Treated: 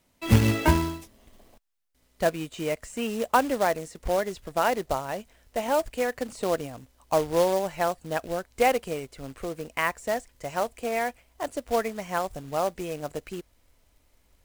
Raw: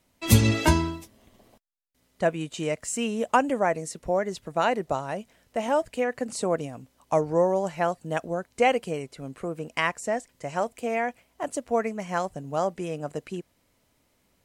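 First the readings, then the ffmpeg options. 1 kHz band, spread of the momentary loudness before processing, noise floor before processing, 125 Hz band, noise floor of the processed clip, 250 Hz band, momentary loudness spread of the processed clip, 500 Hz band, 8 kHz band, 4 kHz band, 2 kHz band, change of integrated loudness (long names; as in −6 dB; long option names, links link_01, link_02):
0.0 dB, 12 LU, −69 dBFS, −1.0 dB, −67 dBFS, −1.5 dB, 12 LU, −0.5 dB, −3.5 dB, −1.5 dB, −0.5 dB, −0.5 dB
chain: -filter_complex "[0:a]acrossover=split=2800[link_01][link_02];[link_02]acompressor=threshold=-43dB:ratio=4:attack=1:release=60[link_03];[link_01][link_03]amix=inputs=2:normalize=0,asubboost=boost=8:cutoff=54,acrusher=bits=3:mode=log:mix=0:aa=0.000001"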